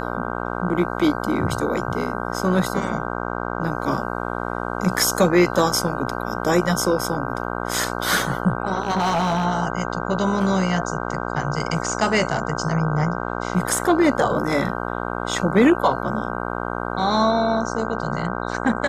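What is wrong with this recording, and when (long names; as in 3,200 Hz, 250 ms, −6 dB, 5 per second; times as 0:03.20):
mains buzz 60 Hz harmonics 26 −27 dBFS
0:08.80–0:09.45: clipping −16 dBFS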